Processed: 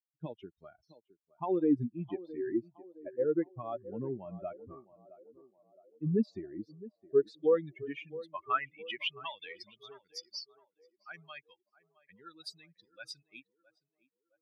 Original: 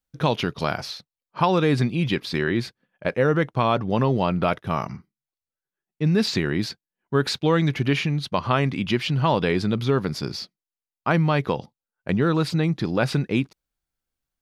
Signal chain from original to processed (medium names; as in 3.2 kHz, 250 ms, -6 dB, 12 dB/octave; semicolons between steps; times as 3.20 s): expander on every frequency bin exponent 3; band-pass sweep 320 Hz -> 4.9 kHz, 6.99–9.74 s; band-passed feedback delay 665 ms, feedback 50%, band-pass 510 Hz, level -16 dB; trim +2.5 dB